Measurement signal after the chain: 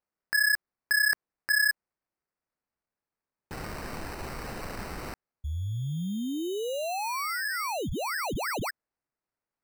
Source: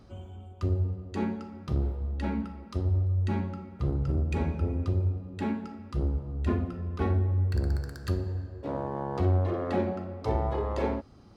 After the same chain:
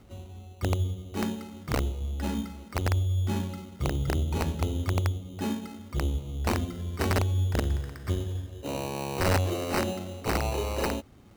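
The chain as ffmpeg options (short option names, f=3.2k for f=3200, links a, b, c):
-af "acrusher=samples=13:mix=1:aa=0.000001,aeval=exprs='(mod(8.91*val(0)+1,2)-1)/8.91':c=same"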